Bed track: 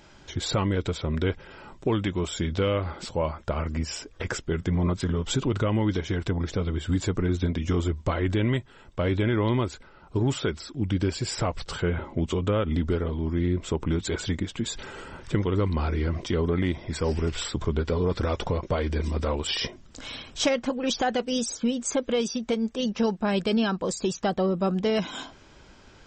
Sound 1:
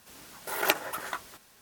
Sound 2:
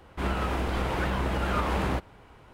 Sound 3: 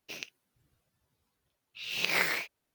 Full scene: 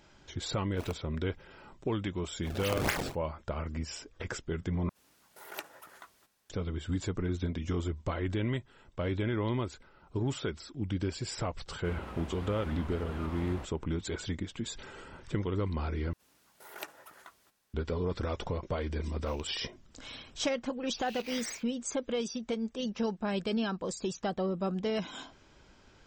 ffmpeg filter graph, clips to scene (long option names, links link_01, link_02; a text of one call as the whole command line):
ffmpeg -i bed.wav -i cue0.wav -i cue1.wav -i cue2.wav -filter_complex "[3:a]asplit=2[link_01][link_02];[1:a]asplit=2[link_03][link_04];[0:a]volume=-7.5dB[link_05];[link_01]acrusher=samples=26:mix=1:aa=0.000001:lfo=1:lforange=41.6:lforate=3.9[link_06];[2:a]highpass=46[link_07];[link_02]alimiter=limit=-17.5dB:level=0:latency=1:release=68[link_08];[link_05]asplit=3[link_09][link_10][link_11];[link_09]atrim=end=4.894[link_12];[link_03]atrim=end=1.61,asetpts=PTS-STARTPTS,volume=-16.5dB[link_13];[link_10]atrim=start=6.496:end=16.134[link_14];[link_04]atrim=end=1.61,asetpts=PTS-STARTPTS,volume=-17.5dB[link_15];[link_11]atrim=start=17.736[link_16];[link_06]atrim=end=2.74,asetpts=PTS-STARTPTS,volume=-3dB,afade=type=in:duration=0.004:curve=hsin,afade=type=out:start_time=2.736:duration=0.004:curve=hsin,adelay=680[link_17];[link_07]atrim=end=2.53,asetpts=PTS-STARTPTS,volume=-15dB,afade=type=in:duration=0.004:curve=hsin,afade=type=out:start_time=2.526:duration=0.004:curve=hsin,adelay=11660[link_18];[link_08]atrim=end=2.74,asetpts=PTS-STARTPTS,volume=-13.5dB,afade=type=in:duration=0.004:curve=hsin,afade=type=out:start_time=2.736:duration=0.004:curve=hsin,adelay=19170[link_19];[link_12][link_13]acrossfade=duration=0.004:curve1=hsin:curve2=hsin[link_20];[link_20][link_14]acrossfade=duration=0.004:curve1=hsin:curve2=hsin[link_21];[link_21][link_15]acrossfade=duration=0.004:curve1=hsin:curve2=hsin[link_22];[link_22][link_16]acrossfade=duration=0.004:curve1=hsin:curve2=hsin[link_23];[link_23][link_17][link_18][link_19]amix=inputs=4:normalize=0" out.wav